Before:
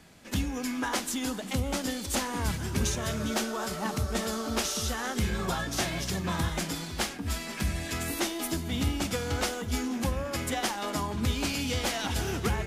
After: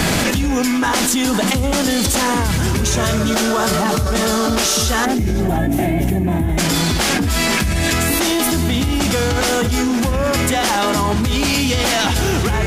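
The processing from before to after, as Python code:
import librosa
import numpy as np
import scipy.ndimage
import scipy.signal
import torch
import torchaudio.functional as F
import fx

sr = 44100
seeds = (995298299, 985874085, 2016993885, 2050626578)

y = fx.curve_eq(x, sr, hz=(210.0, 320.0, 500.0, 710.0, 1200.0, 2100.0, 4900.0, 13000.0), db=(0, 6, -9, 1, -20, -7, -27, -4), at=(5.04, 6.57), fade=0.02)
y = y + 10.0 ** (-19.0 / 20.0) * np.pad(y, (int(517 * sr / 1000.0), 0))[:len(y)]
y = fx.env_flatten(y, sr, amount_pct=100)
y = y * 10.0 ** (7.0 / 20.0)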